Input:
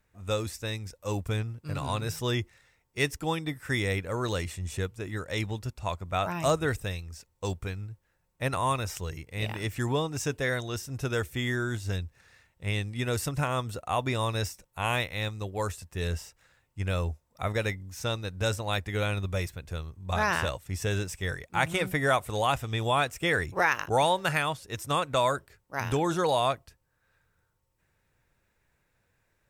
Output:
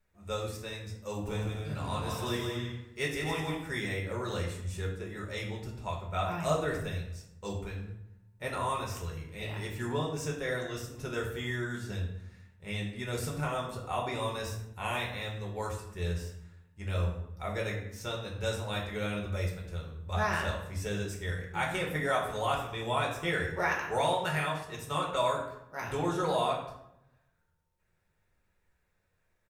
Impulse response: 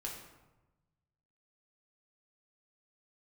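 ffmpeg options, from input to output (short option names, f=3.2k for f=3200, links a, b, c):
-filter_complex "[0:a]asplit=3[a][b][c];[a]afade=t=out:st=1.26:d=0.02[d];[b]aecho=1:1:160|256|313.6|348.2|368.9:0.631|0.398|0.251|0.158|0.1,afade=t=in:st=1.26:d=0.02,afade=t=out:st=3.55:d=0.02[e];[c]afade=t=in:st=3.55:d=0.02[f];[d][e][f]amix=inputs=3:normalize=0[g];[1:a]atrim=start_sample=2205,asetrate=61740,aresample=44100[h];[g][h]afir=irnorm=-1:irlink=0,volume=-1dB"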